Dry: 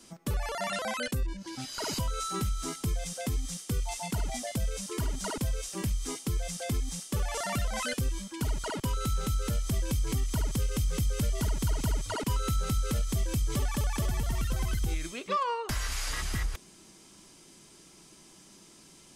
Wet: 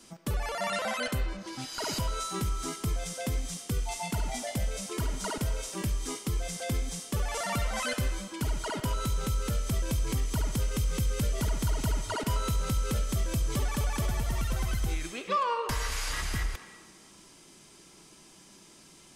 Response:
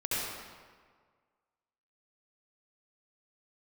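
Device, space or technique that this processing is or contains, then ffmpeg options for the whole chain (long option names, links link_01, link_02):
filtered reverb send: -filter_complex "[0:a]asplit=2[link_01][link_02];[link_02]highpass=430,lowpass=4400[link_03];[1:a]atrim=start_sample=2205[link_04];[link_03][link_04]afir=irnorm=-1:irlink=0,volume=-13dB[link_05];[link_01][link_05]amix=inputs=2:normalize=0"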